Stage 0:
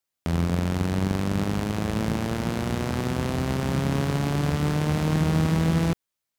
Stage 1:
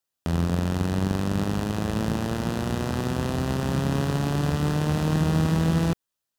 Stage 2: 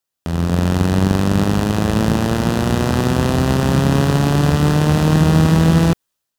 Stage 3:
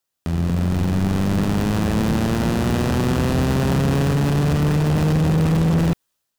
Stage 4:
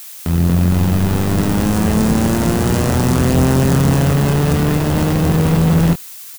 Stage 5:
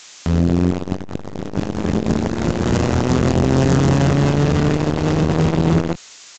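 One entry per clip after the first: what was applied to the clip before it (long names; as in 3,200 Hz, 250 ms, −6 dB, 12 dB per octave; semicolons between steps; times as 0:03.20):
notch filter 2,200 Hz, Q 6.3
automatic gain control gain up to 8 dB; level +2.5 dB
soft clipping −15.5 dBFS, distortion −9 dB; level +1.5 dB
phase distortion by the signal itself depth 0.072 ms; double-tracking delay 23 ms −7.5 dB; background noise blue −38 dBFS; level +4 dB
downsampling to 16,000 Hz; saturating transformer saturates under 230 Hz; level +1.5 dB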